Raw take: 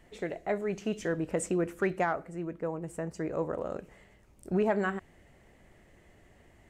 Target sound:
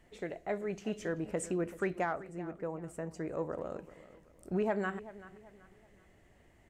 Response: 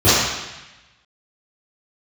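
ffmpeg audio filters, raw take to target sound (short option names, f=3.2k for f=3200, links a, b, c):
-filter_complex "[0:a]asplit=2[a][b];[b]adelay=383,lowpass=f=4.1k:p=1,volume=-16.5dB,asplit=2[c][d];[d]adelay=383,lowpass=f=4.1k:p=1,volume=0.37,asplit=2[e][f];[f]adelay=383,lowpass=f=4.1k:p=1,volume=0.37[g];[a][c][e][g]amix=inputs=4:normalize=0,volume=-4.5dB"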